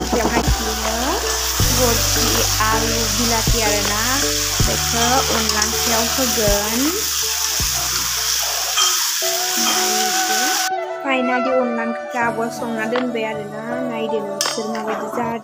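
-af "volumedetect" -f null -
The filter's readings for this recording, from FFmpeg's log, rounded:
mean_volume: -18.8 dB
max_volume: -1.6 dB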